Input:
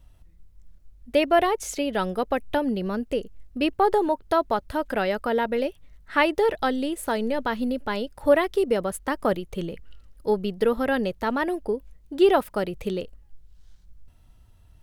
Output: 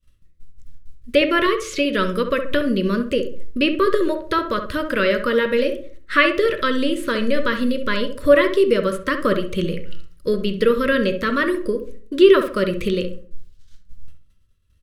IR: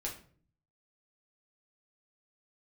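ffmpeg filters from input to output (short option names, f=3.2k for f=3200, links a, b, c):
-filter_complex "[0:a]agate=range=-33dB:threshold=-39dB:ratio=3:detection=peak,acrossover=split=4100[a][b];[b]acompressor=threshold=-50dB:ratio=4:attack=1:release=60[c];[a][c]amix=inputs=2:normalize=0,equalizer=f=6.1k:w=0.31:g=8.5,asplit=2[d][e];[e]acompressor=threshold=-34dB:ratio=6,volume=2dB[f];[d][f]amix=inputs=2:normalize=0,asuperstop=centerf=790:order=8:qfactor=1.9,asplit=2[g][h];[h]adelay=66,lowpass=f=1.4k:p=1,volume=-7dB,asplit=2[i][j];[j]adelay=66,lowpass=f=1.4k:p=1,volume=0.38,asplit=2[k][l];[l]adelay=66,lowpass=f=1.4k:p=1,volume=0.38,asplit=2[m][n];[n]adelay=66,lowpass=f=1.4k:p=1,volume=0.38[o];[g][i][k][m][o]amix=inputs=5:normalize=0,asplit=2[p][q];[1:a]atrim=start_sample=2205,asetrate=48510,aresample=44100,lowpass=4.8k[r];[q][r]afir=irnorm=-1:irlink=0,volume=-6dB[s];[p][s]amix=inputs=2:normalize=0"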